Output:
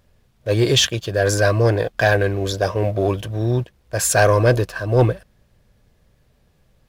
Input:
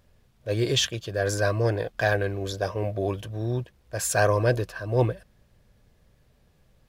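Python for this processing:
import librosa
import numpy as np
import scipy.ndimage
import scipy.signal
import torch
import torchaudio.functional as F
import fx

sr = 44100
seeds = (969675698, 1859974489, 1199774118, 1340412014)

y = fx.leveller(x, sr, passes=1)
y = F.gain(torch.from_numpy(y), 4.5).numpy()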